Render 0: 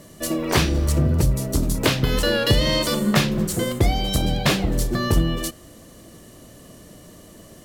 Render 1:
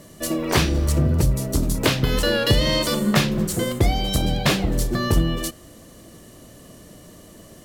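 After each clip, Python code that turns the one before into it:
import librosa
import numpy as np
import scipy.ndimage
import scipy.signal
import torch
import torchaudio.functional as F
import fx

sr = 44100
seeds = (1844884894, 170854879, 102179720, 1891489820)

y = x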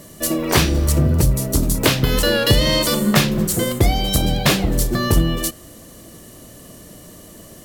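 y = fx.high_shelf(x, sr, hz=9700.0, db=8.5)
y = y * librosa.db_to_amplitude(3.0)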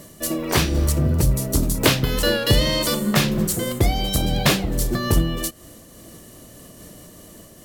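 y = fx.am_noise(x, sr, seeds[0], hz=5.7, depth_pct=60)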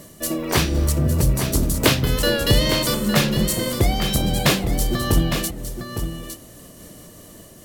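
y = x + 10.0 ** (-8.5 / 20.0) * np.pad(x, (int(859 * sr / 1000.0), 0))[:len(x)]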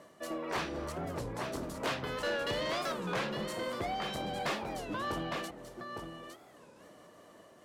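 y = fx.bandpass_q(x, sr, hz=1000.0, q=0.96)
y = 10.0 ** (-25.0 / 20.0) * np.tanh(y / 10.0 ** (-25.0 / 20.0))
y = fx.record_warp(y, sr, rpm=33.33, depth_cents=250.0)
y = y * librosa.db_to_amplitude(-4.0)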